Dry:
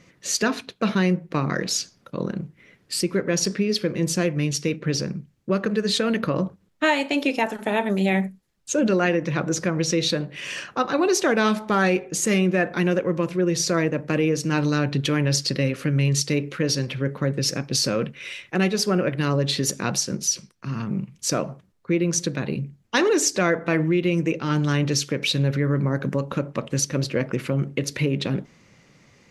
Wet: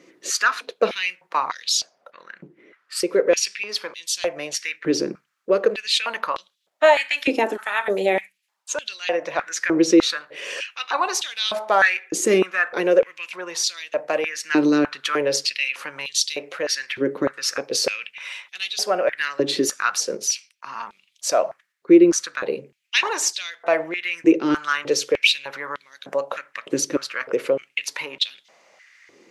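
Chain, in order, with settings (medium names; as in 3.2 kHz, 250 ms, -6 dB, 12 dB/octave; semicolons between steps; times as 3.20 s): 1.80–2.95 s: treble shelf 2.3 kHz -> 3.6 kHz -12 dB; step-sequenced high-pass 3.3 Hz 340–3500 Hz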